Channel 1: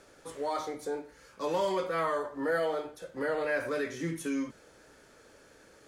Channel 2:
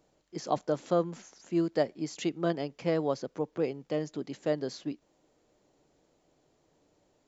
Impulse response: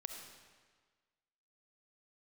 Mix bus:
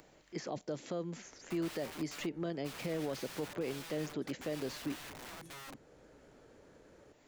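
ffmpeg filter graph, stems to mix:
-filter_complex "[0:a]tiltshelf=frequency=1200:gain=8.5,acompressor=threshold=-28dB:ratio=6,aeval=exprs='(mod(47.3*val(0)+1,2)-1)/47.3':channel_layout=same,adelay=1250,volume=-10dB[link_01];[1:a]equalizer=frequency=2000:width=1.4:gain=7.5,acrossover=split=670|2800[link_02][link_03][link_04];[link_02]acompressor=threshold=-29dB:ratio=4[link_05];[link_03]acompressor=threshold=-48dB:ratio=4[link_06];[link_04]acompressor=threshold=-49dB:ratio=4[link_07];[link_05][link_06][link_07]amix=inputs=3:normalize=0,volume=-0.5dB[link_08];[link_01][link_08]amix=inputs=2:normalize=0,acompressor=mode=upward:threshold=-54dB:ratio=2.5,alimiter=level_in=4.5dB:limit=-24dB:level=0:latency=1:release=40,volume=-4.5dB"

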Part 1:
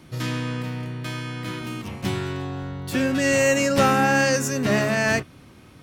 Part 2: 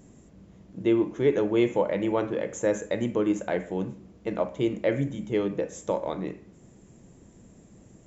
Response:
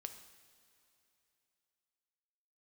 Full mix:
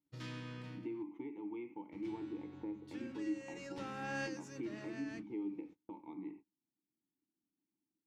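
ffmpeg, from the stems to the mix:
-filter_complex "[0:a]aemphasis=mode=production:type=cd,bandreject=frequency=710:width=12,asoftclip=type=tanh:threshold=-10.5dB,volume=-18.5dB,asplit=3[link_01][link_02][link_03];[link_01]atrim=end=1.03,asetpts=PTS-STARTPTS,afade=type=out:start_time=1.026:duration=0.004:curve=hsin[link_04];[link_02]atrim=start=1.03:end=1.92,asetpts=PTS-STARTPTS,volume=0[link_05];[link_03]atrim=start=1.92,asetpts=PTS-STARTPTS,afade=type=in:duration=0.004:curve=hsin[link_06];[link_04][link_05][link_06]concat=n=3:v=0:a=1[link_07];[1:a]acrossover=split=560|2000[link_08][link_09][link_10];[link_08]acompressor=threshold=-35dB:ratio=4[link_11];[link_09]acompressor=threshold=-42dB:ratio=4[link_12];[link_10]acompressor=threshold=-53dB:ratio=4[link_13];[link_11][link_12][link_13]amix=inputs=3:normalize=0,aphaser=in_gain=1:out_gain=1:delay=1.1:decay=0.25:speed=0.39:type=triangular,asplit=3[link_14][link_15][link_16];[link_14]bandpass=frequency=300:width_type=q:width=8,volume=0dB[link_17];[link_15]bandpass=frequency=870:width_type=q:width=8,volume=-6dB[link_18];[link_16]bandpass=frequency=2240:width_type=q:width=8,volume=-9dB[link_19];[link_17][link_18][link_19]amix=inputs=3:normalize=0,volume=-0.5dB,asplit=2[link_20][link_21];[link_21]apad=whole_len=256917[link_22];[link_07][link_22]sidechaincompress=threshold=-54dB:ratio=4:attack=45:release=441[link_23];[link_23][link_20]amix=inputs=2:normalize=0,agate=range=-30dB:threshold=-53dB:ratio=16:detection=peak,lowpass=4500"

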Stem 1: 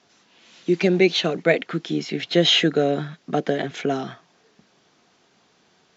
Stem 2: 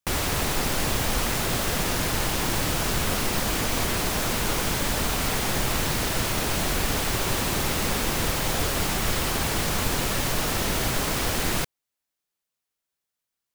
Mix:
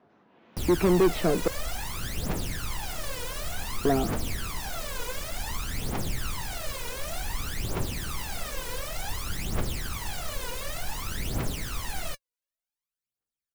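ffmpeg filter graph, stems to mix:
ffmpeg -i stem1.wav -i stem2.wav -filter_complex "[0:a]lowpass=1100,asoftclip=type=tanh:threshold=-18.5dB,volume=2dB,asplit=3[link_01][link_02][link_03];[link_01]atrim=end=1.48,asetpts=PTS-STARTPTS,afade=type=out:start_time=1.476:duration=0.004:curve=hsin[link_04];[link_02]atrim=start=1.48:end=3.85,asetpts=PTS-STARTPTS,volume=0[link_05];[link_03]atrim=start=3.85,asetpts=PTS-STARTPTS,afade=type=in:duration=0.004:curve=hsin[link_06];[link_04][link_05][link_06]concat=n=3:v=0:a=1[link_07];[1:a]aphaser=in_gain=1:out_gain=1:delay=2.1:decay=0.78:speed=0.55:type=triangular,adelay=500,volume=-13.5dB[link_08];[link_07][link_08]amix=inputs=2:normalize=0" out.wav

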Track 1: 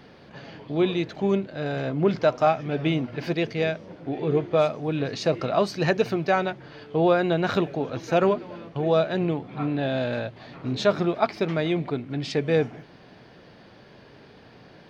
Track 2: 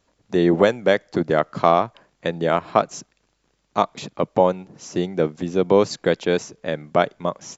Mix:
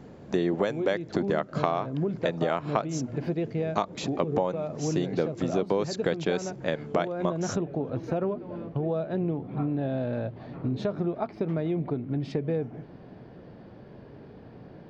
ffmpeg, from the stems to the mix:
ffmpeg -i stem1.wav -i stem2.wav -filter_complex "[0:a]highshelf=frequency=2100:gain=-10.5,acompressor=threshold=-30dB:ratio=2.5,tiltshelf=frequency=790:gain=5,volume=0.5dB[link_01];[1:a]volume=0dB[link_02];[link_01][link_02]amix=inputs=2:normalize=0,acompressor=threshold=-23dB:ratio=5" out.wav

